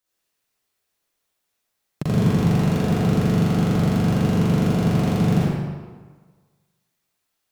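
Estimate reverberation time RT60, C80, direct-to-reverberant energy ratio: 1.5 s, -1.5 dB, -7.5 dB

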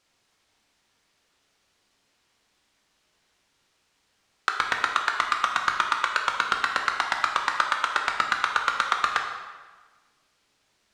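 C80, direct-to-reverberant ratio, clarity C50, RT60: 6.5 dB, 2.0 dB, 5.0 dB, 1.4 s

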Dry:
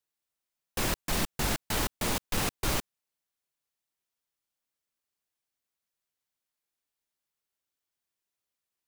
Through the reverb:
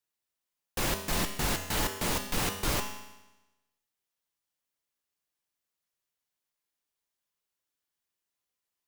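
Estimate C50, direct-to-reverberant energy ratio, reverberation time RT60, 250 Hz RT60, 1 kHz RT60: 8.0 dB, 4.5 dB, 1.0 s, 1.0 s, 1.0 s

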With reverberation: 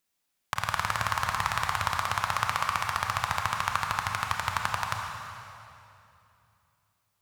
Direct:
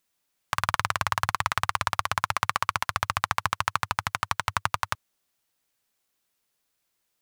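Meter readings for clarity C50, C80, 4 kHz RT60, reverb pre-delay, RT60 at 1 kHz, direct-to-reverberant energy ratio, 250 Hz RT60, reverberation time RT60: 2.0 dB, 3.0 dB, 2.4 s, 26 ms, 2.7 s, 1.5 dB, 3.1 s, 2.8 s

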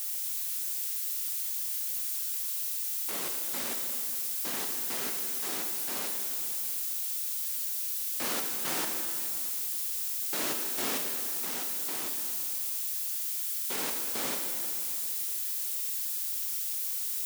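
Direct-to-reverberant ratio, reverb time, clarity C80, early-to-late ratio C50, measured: 2.5 dB, 2.7 s, 5.0 dB, 4.0 dB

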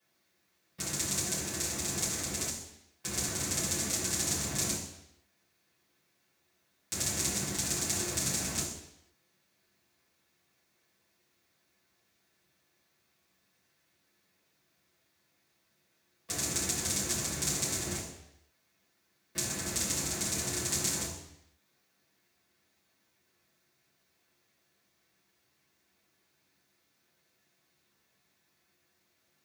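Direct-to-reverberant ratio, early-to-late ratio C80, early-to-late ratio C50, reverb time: -9.0 dB, 7.5 dB, 4.5 dB, 0.80 s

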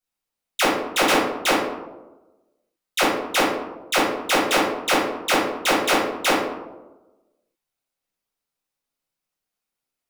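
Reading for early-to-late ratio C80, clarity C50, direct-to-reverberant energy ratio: 5.0 dB, 2.0 dB, -7.0 dB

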